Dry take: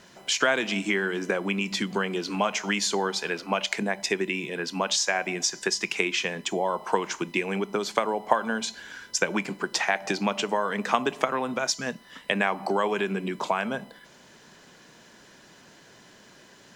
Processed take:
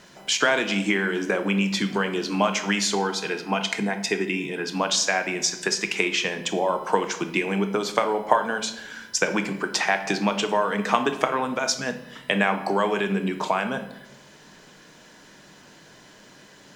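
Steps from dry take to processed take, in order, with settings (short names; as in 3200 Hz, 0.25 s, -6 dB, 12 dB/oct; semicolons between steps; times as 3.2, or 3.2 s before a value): 2.94–4.69 notch comb 570 Hz; shoebox room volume 250 m³, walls mixed, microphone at 0.47 m; gain +2 dB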